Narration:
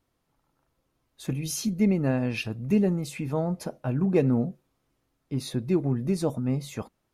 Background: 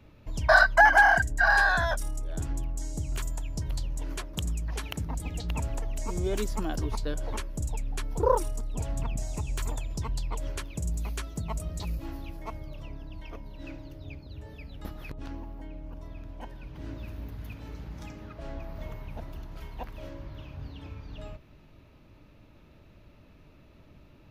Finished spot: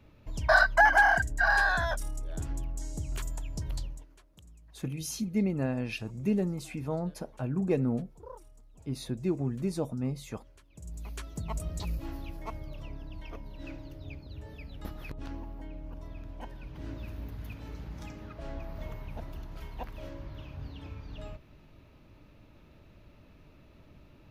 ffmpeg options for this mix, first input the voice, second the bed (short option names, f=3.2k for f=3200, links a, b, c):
-filter_complex "[0:a]adelay=3550,volume=-5.5dB[a];[1:a]volume=19.5dB,afade=t=out:st=3.8:d=0.26:silence=0.0944061,afade=t=in:st=10.67:d=0.95:silence=0.0749894[b];[a][b]amix=inputs=2:normalize=0"